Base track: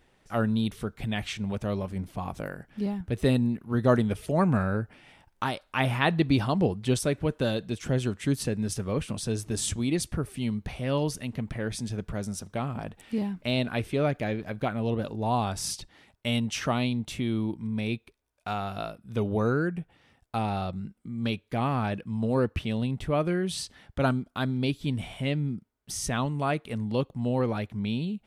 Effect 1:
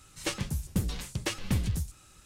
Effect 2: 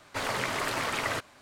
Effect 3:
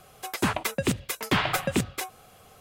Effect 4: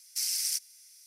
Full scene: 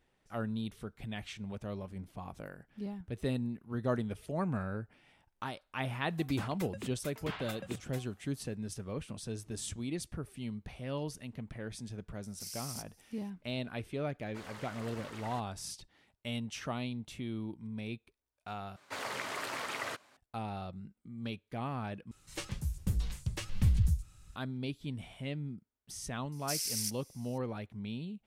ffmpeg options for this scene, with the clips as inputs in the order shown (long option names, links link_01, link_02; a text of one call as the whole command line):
ffmpeg -i bed.wav -i cue0.wav -i cue1.wav -i cue2.wav -i cue3.wav -filter_complex "[4:a]asplit=2[link_01][link_02];[2:a]asplit=2[link_03][link_04];[0:a]volume=-10.5dB[link_05];[link_03]bandreject=frequency=2400:width=28[link_06];[link_04]highpass=frequency=240:poles=1[link_07];[1:a]asubboost=boost=9.5:cutoff=140[link_08];[link_05]asplit=3[link_09][link_10][link_11];[link_09]atrim=end=18.764[link_12];[link_07]atrim=end=1.41,asetpts=PTS-STARTPTS,volume=-7.5dB[link_13];[link_10]atrim=start=20.166:end=22.114[link_14];[link_08]atrim=end=2.25,asetpts=PTS-STARTPTS,volume=-8.5dB[link_15];[link_11]atrim=start=24.356[link_16];[3:a]atrim=end=2.6,asetpts=PTS-STARTPTS,volume=-18dB,afade=type=in:duration=0.004:curve=hsin,afade=type=out:start_time=2.596:duration=0.004:curve=hsin,adelay=5950[link_17];[link_01]atrim=end=1.06,asetpts=PTS-STARTPTS,volume=-13.5dB,afade=type=in:duration=0.004:curve=hsin,afade=type=out:start_time=1.056:duration=0.004:curve=hsin,adelay=12240[link_18];[link_06]atrim=end=1.41,asetpts=PTS-STARTPTS,volume=-18dB,afade=type=in:duration=0.004:curve=hsin,afade=type=out:start_time=1.406:duration=0.004:curve=hsin,adelay=14200[link_19];[link_02]atrim=end=1.06,asetpts=PTS-STARTPTS,volume=-5dB,afade=type=in:duration=0.004:curve=hsin,afade=type=out:start_time=1.056:duration=0.004:curve=hsin,adelay=1160712S[link_20];[link_12][link_13]acrossfade=duration=0.004:curve1=hsin:curve2=hsin[link_21];[link_21][link_14]acrossfade=duration=0.004:curve1=hsin:curve2=hsin[link_22];[link_22][link_15]acrossfade=duration=0.004:curve1=hsin:curve2=hsin[link_23];[link_23][link_16]acrossfade=duration=0.004:curve1=hsin:curve2=hsin[link_24];[link_24][link_17][link_18][link_19][link_20]amix=inputs=5:normalize=0" out.wav